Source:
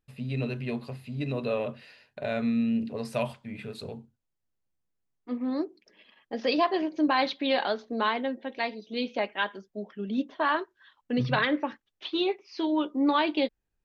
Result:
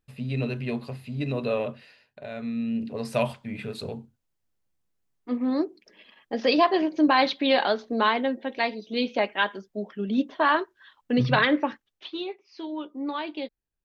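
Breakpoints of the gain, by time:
1.61 s +2.5 dB
2.29 s -7 dB
3.18 s +4.5 dB
11.69 s +4.5 dB
12.27 s -7 dB

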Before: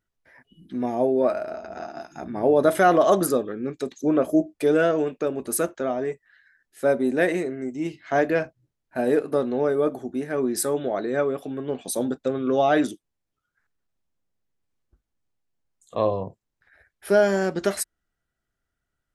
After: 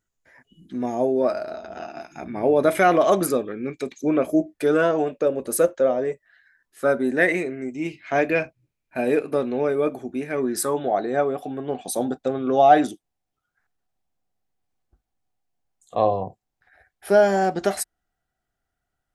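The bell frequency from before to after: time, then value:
bell +13 dB 0.25 oct
1.06 s 6900 Hz
2.01 s 2300 Hz
4.41 s 2300 Hz
5.2 s 530 Hz
6.11 s 530 Hz
7.41 s 2400 Hz
10.3 s 2400 Hz
10.85 s 750 Hz

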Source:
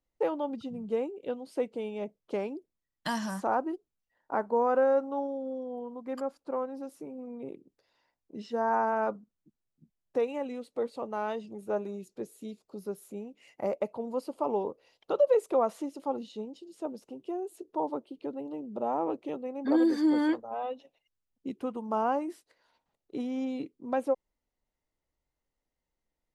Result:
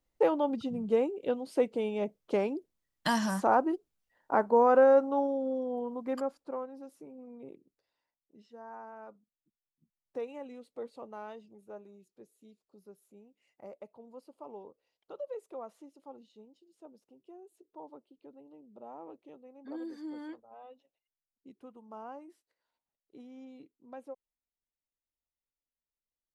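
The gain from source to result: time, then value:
6.05 s +3.5 dB
6.7 s -7 dB
7.53 s -7 dB
8.57 s -19 dB
9.13 s -19 dB
10.18 s -9 dB
11.03 s -9 dB
11.87 s -16.5 dB

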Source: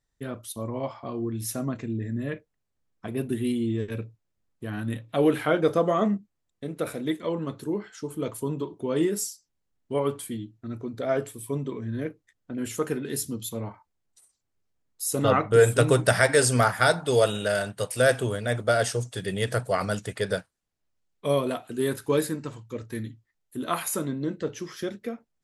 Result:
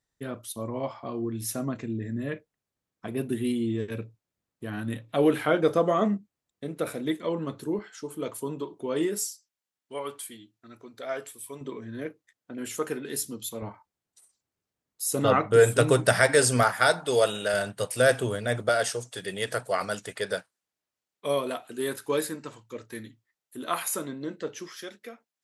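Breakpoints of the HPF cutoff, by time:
HPF 6 dB/oct
120 Hz
from 7.79 s 330 Hz
from 9.29 s 1300 Hz
from 11.61 s 380 Hz
from 13.62 s 120 Hz
from 16.63 s 330 Hz
from 17.54 s 110 Hz
from 18.69 s 460 Hz
from 24.69 s 1200 Hz

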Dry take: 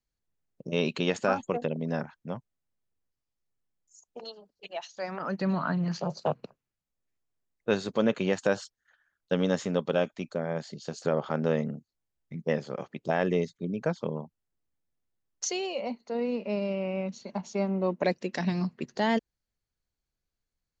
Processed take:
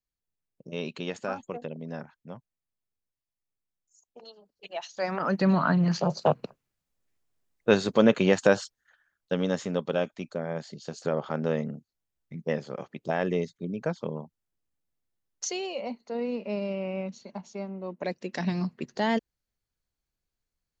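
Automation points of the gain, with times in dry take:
4.26 s -6.5 dB
5.05 s +5.5 dB
8.49 s +5.5 dB
9.35 s -1 dB
17.01 s -1 dB
17.82 s -9.5 dB
18.42 s 0 dB

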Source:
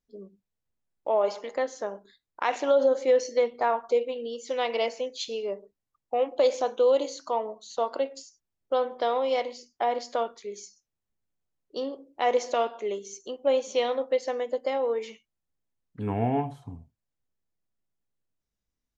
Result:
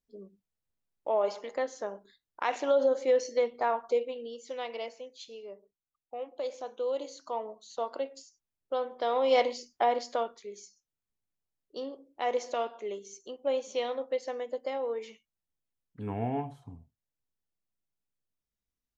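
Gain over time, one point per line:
3.93 s -3.5 dB
5.09 s -13 dB
6.56 s -13 dB
7.43 s -6 dB
8.96 s -6 dB
9.43 s +4.5 dB
10.52 s -6 dB

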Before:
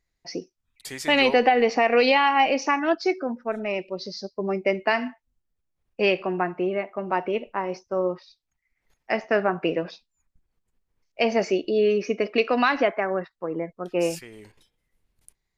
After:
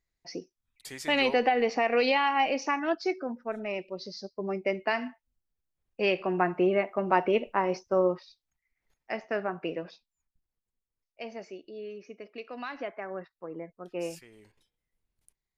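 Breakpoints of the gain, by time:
6.01 s -6 dB
6.55 s +1 dB
7.93 s +1 dB
9.12 s -9 dB
9.88 s -9 dB
11.57 s -20 dB
12.43 s -20 dB
13.21 s -10.5 dB

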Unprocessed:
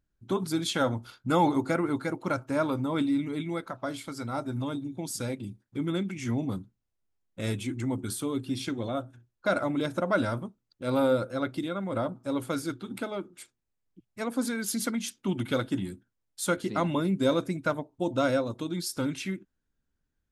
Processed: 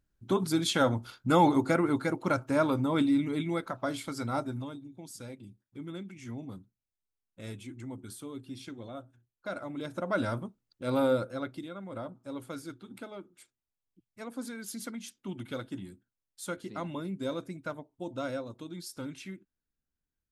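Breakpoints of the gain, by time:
4.38 s +1 dB
4.79 s -11 dB
9.64 s -11 dB
10.3 s -2 dB
11.17 s -2 dB
11.67 s -9.5 dB

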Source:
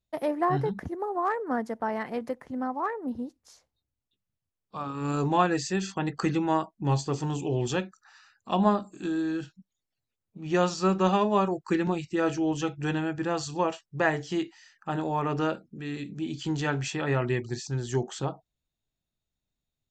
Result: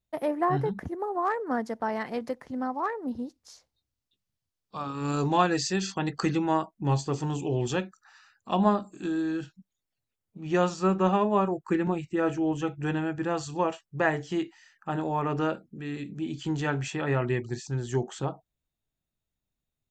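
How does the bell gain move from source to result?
bell 4800 Hz 1.1 oct
0.7 s -3.5 dB
1.71 s +5.5 dB
6.12 s +5.5 dB
6.53 s -2 dB
10.44 s -2 dB
11.06 s -12.5 dB
12.63 s -12.5 dB
13.19 s -5.5 dB

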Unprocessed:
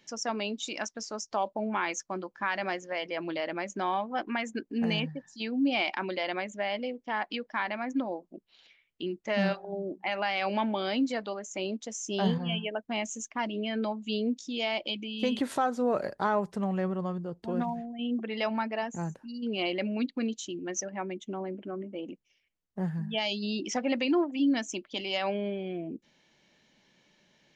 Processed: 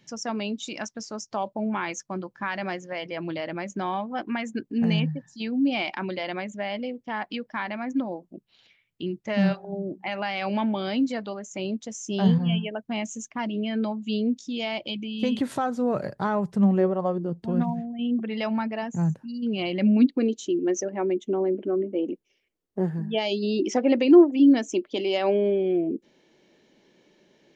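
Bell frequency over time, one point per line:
bell +14 dB 1.3 oct
16.54 s 130 Hz
17.01 s 790 Hz
17.42 s 140 Hz
19.7 s 140 Hz
20.18 s 380 Hz

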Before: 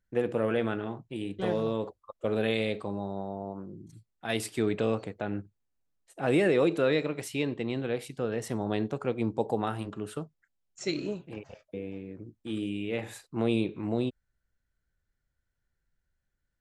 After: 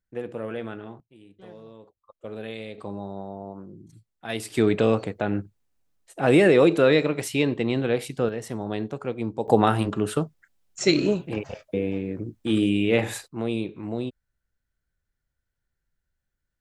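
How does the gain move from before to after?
-4.5 dB
from 1 s -16 dB
from 1.97 s -7.5 dB
from 2.78 s 0 dB
from 4.5 s +7.5 dB
from 8.29 s +0.5 dB
from 9.48 s +11.5 dB
from 13.28 s -0.5 dB

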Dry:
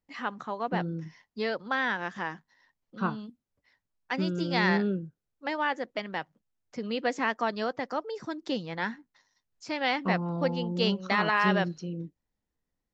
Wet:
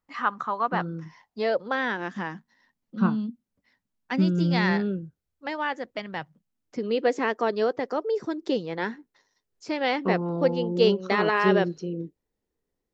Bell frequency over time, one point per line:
bell +12 dB 0.79 oct
1 s 1200 Hz
2.22 s 220 Hz
4.33 s 220 Hz
4.95 s 69 Hz
5.86 s 69 Hz
6.91 s 410 Hz

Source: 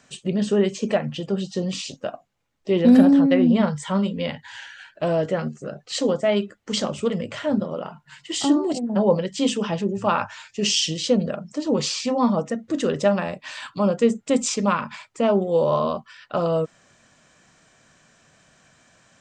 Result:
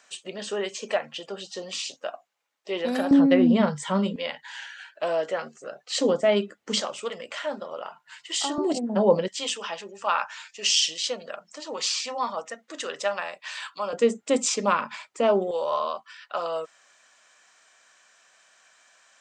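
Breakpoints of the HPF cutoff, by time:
660 Hz
from 3.11 s 200 Hz
from 4.16 s 600 Hz
from 5.96 s 230 Hz
from 6.81 s 710 Hz
from 8.58 s 230 Hz
from 9.28 s 910 Hz
from 13.93 s 330 Hz
from 15.51 s 830 Hz

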